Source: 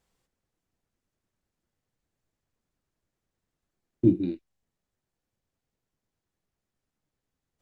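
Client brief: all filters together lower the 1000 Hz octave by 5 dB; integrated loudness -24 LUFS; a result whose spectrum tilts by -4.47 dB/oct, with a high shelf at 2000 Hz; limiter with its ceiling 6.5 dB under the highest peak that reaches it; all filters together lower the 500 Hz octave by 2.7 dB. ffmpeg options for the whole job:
-af "equalizer=f=500:t=o:g=-5,equalizer=f=1k:t=o:g=-3.5,highshelf=f=2k:g=-5,volume=7dB,alimiter=limit=-9dB:level=0:latency=1"

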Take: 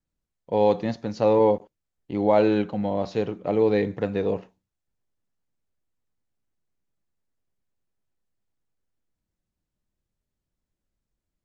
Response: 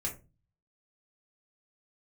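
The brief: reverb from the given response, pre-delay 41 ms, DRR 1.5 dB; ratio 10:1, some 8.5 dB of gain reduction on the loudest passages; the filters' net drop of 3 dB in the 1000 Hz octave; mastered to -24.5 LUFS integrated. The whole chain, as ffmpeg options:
-filter_complex "[0:a]equalizer=f=1k:t=o:g=-4,acompressor=threshold=-24dB:ratio=10,asplit=2[a][b];[1:a]atrim=start_sample=2205,adelay=41[c];[b][c]afir=irnorm=-1:irlink=0,volume=-3.5dB[d];[a][d]amix=inputs=2:normalize=0,volume=3dB"

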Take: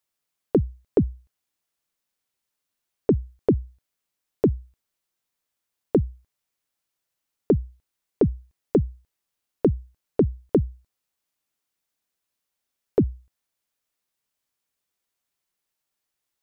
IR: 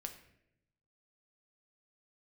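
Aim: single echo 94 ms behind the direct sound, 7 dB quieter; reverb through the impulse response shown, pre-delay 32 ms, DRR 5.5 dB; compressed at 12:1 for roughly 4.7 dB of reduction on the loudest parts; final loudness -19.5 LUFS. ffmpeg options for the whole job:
-filter_complex "[0:a]acompressor=threshold=-18dB:ratio=12,aecho=1:1:94:0.447,asplit=2[a][b];[1:a]atrim=start_sample=2205,adelay=32[c];[b][c]afir=irnorm=-1:irlink=0,volume=-2.5dB[d];[a][d]amix=inputs=2:normalize=0,volume=8.5dB"

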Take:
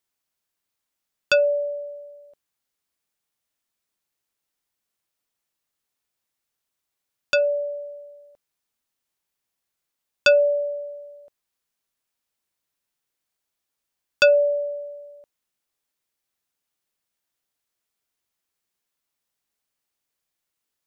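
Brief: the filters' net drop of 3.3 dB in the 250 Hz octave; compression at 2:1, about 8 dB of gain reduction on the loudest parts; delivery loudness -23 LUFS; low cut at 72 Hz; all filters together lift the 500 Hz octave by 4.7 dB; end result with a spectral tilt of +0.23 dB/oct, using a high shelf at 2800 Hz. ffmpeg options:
-af "highpass=72,equalizer=f=250:t=o:g=-8,equalizer=f=500:t=o:g=6.5,highshelf=f=2.8k:g=7,acompressor=threshold=-23dB:ratio=2,volume=0.5dB"

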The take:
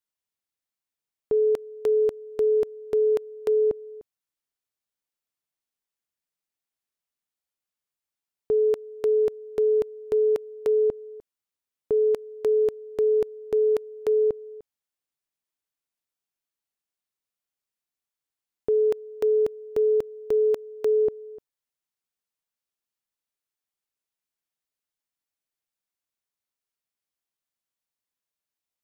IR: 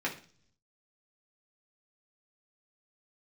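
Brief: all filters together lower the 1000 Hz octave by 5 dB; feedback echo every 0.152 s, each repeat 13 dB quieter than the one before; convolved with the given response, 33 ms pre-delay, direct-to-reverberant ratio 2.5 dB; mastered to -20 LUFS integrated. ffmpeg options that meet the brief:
-filter_complex "[0:a]equalizer=f=1k:t=o:g=-7,aecho=1:1:152|304|456:0.224|0.0493|0.0108,asplit=2[a][b];[1:a]atrim=start_sample=2205,adelay=33[c];[b][c]afir=irnorm=-1:irlink=0,volume=-9dB[d];[a][d]amix=inputs=2:normalize=0,volume=5.5dB"

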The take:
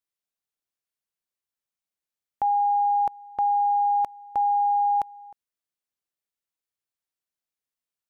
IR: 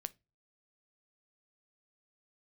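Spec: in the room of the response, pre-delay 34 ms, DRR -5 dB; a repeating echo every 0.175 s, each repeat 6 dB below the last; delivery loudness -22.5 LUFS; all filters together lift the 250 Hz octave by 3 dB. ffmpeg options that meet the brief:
-filter_complex "[0:a]equalizer=f=250:t=o:g=4,aecho=1:1:175|350|525|700|875|1050:0.501|0.251|0.125|0.0626|0.0313|0.0157,asplit=2[a][b];[1:a]atrim=start_sample=2205,adelay=34[c];[b][c]afir=irnorm=-1:irlink=0,volume=8dB[d];[a][d]amix=inputs=2:normalize=0,volume=-6.5dB"

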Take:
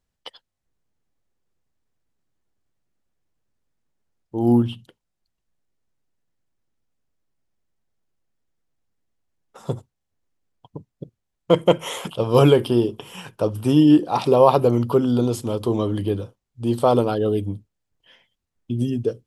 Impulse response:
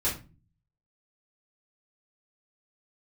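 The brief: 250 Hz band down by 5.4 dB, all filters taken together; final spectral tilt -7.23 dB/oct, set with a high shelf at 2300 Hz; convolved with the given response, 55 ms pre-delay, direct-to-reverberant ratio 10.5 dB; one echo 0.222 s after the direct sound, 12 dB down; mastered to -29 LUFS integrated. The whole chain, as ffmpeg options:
-filter_complex "[0:a]equalizer=f=250:t=o:g=-7,highshelf=f=2.3k:g=-5.5,aecho=1:1:222:0.251,asplit=2[a][b];[1:a]atrim=start_sample=2205,adelay=55[c];[b][c]afir=irnorm=-1:irlink=0,volume=-19dB[d];[a][d]amix=inputs=2:normalize=0,volume=-7dB"

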